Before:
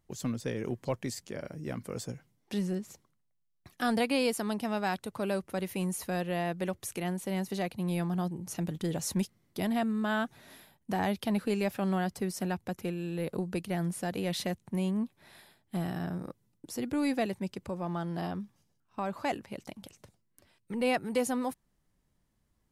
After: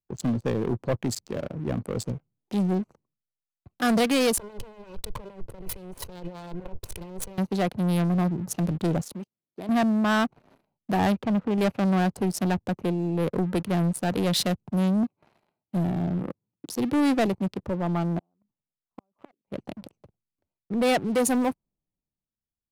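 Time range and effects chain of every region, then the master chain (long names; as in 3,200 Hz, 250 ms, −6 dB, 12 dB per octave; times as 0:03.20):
0:04.37–0:07.38: lower of the sound and its delayed copy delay 2 ms + compressor whose output falls as the input rises −45 dBFS
0:09.01–0:09.69: high-pass filter 390 Hz 6 dB per octave + output level in coarse steps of 14 dB
0:11.12–0:11.58: low-pass filter 2,100 Hz + dynamic equaliser 370 Hz, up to −5 dB, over −40 dBFS, Q 1.1
0:15.03–0:17.28: high-pass filter 71 Hz + one half of a high-frequency compander encoder only
0:18.18–0:19.53: parametric band 78 Hz −9.5 dB 1.3 octaves + output level in coarse steps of 10 dB + gate with flip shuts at −31 dBFS, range −25 dB
whole clip: adaptive Wiener filter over 25 samples; leveller curve on the samples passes 3; multiband upward and downward expander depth 40%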